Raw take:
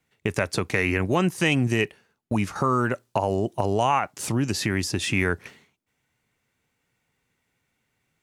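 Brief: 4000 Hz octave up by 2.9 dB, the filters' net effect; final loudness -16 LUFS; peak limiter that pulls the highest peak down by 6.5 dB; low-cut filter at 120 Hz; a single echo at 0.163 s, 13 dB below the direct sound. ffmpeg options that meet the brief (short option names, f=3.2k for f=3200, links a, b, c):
-af "highpass=120,equalizer=f=4k:t=o:g=4,alimiter=limit=-12.5dB:level=0:latency=1,aecho=1:1:163:0.224,volume=9.5dB"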